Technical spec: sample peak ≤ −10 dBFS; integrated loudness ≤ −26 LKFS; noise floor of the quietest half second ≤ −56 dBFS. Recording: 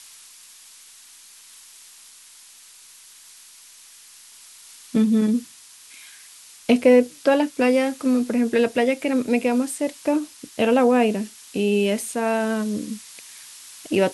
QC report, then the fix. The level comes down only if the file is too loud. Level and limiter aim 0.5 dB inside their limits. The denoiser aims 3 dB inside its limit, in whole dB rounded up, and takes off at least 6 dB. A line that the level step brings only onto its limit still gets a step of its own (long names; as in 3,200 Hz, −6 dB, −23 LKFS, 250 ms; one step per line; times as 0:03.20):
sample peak −6.0 dBFS: out of spec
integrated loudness −21.0 LKFS: out of spec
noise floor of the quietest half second −48 dBFS: out of spec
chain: broadband denoise 6 dB, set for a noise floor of −48 dBFS
level −5.5 dB